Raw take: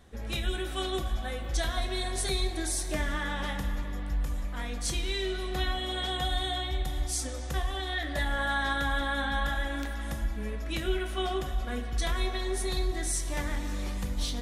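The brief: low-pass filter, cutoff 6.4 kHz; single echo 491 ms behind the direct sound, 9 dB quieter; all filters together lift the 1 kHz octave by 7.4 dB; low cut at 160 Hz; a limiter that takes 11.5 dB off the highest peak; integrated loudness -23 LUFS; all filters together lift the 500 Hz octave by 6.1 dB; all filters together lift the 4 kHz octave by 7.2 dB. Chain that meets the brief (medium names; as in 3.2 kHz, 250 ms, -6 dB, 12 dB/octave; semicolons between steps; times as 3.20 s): high-pass 160 Hz; low-pass 6.4 kHz; peaking EQ 500 Hz +7 dB; peaking EQ 1 kHz +7 dB; peaking EQ 4 kHz +8.5 dB; peak limiter -23 dBFS; delay 491 ms -9 dB; trim +8.5 dB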